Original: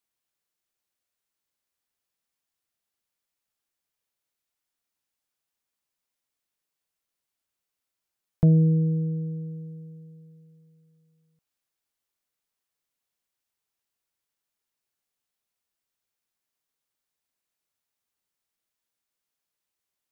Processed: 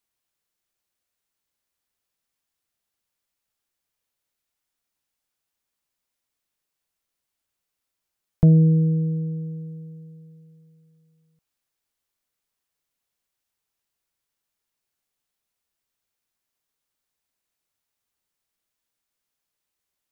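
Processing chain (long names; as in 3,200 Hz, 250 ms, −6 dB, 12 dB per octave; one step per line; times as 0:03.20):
low-shelf EQ 86 Hz +5 dB
level +2.5 dB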